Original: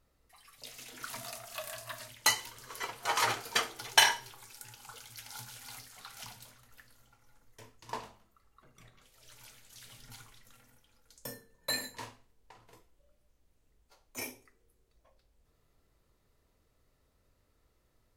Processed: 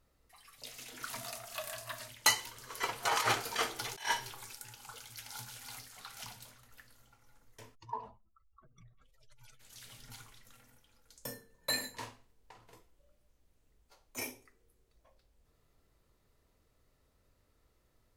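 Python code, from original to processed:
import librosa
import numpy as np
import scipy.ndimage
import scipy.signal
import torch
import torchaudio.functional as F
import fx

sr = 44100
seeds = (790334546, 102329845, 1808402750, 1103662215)

y = fx.over_compress(x, sr, threshold_db=-31.0, ratio=-0.5, at=(2.83, 4.55))
y = fx.spec_expand(y, sr, power=2.2, at=(7.74, 9.59), fade=0.02)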